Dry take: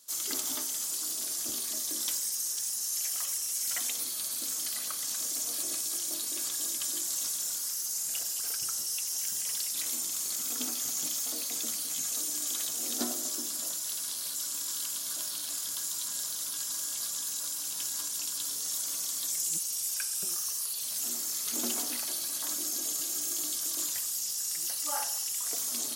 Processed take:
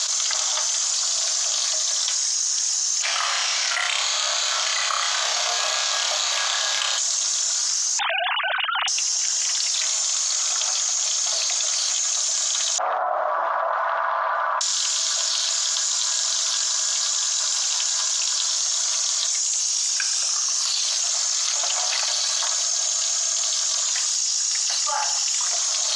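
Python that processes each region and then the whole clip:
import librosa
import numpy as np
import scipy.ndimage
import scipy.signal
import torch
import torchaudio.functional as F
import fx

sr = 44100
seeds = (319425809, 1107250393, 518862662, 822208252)

y = fx.chain(x, sr, fx.lowpass(hz=3000.0, slope=12),
    fx.room_flutter(wall_m=5.1, rt60_s=0.51),
    fx.resample_bad(factor=4, down='filtered', up='zero_stuff'), at=(3.02, 6.98))
y = fx.chain(y, sr, fx.sine_speech(),
    fx.peak_eq(hz=990.0, db=6.5, octaves=0.72), at=(7.99, 8.88))
y = fx.chain(y, sr, fx.lowpass(hz=1400.0, slope=24),
    fx.peak_eq(hz=1000.0, db=7.5, octaves=1.3), at=(12.78, 14.61))
y = scipy.signal.sosfilt(scipy.signal.cheby1(4, 1.0, [640.0, 6800.0], 'bandpass', fs=sr, output='sos'), y)
y = fx.env_flatten(y, sr, amount_pct=100)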